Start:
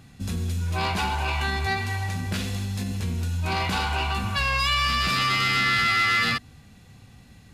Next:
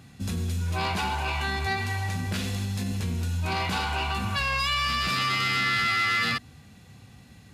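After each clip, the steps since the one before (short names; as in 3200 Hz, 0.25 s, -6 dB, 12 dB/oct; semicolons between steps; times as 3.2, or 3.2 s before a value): in parallel at +1.5 dB: limiter -21.5 dBFS, peak gain reduction 8.5 dB; on the sum: HPF 65 Hz; gain -6.5 dB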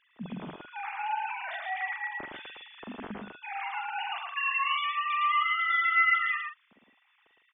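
sine-wave speech; doubler 44 ms -8 dB; echo 0.111 s -3 dB; gain -6 dB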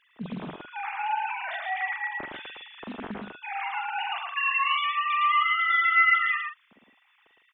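Doppler distortion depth 0.19 ms; gain +3.5 dB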